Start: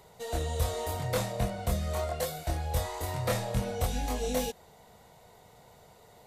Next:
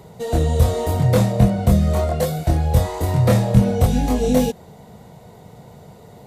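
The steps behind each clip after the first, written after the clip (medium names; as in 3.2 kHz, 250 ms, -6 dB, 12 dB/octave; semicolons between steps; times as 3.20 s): peaking EQ 170 Hz +14.5 dB 2.9 oct; trim +5.5 dB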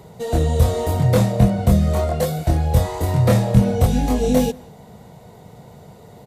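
echo from a far wall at 30 m, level -25 dB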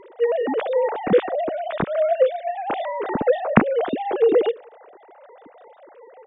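formants replaced by sine waves; trim -4 dB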